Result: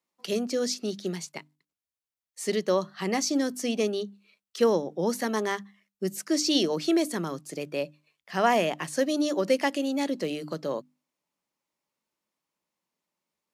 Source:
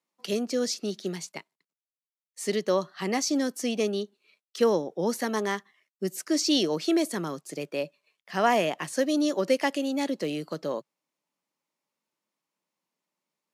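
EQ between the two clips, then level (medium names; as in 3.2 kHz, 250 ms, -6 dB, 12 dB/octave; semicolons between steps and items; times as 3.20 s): peaking EQ 64 Hz +13 dB 1.2 oct; hum notches 50/100/150/200/250/300 Hz; 0.0 dB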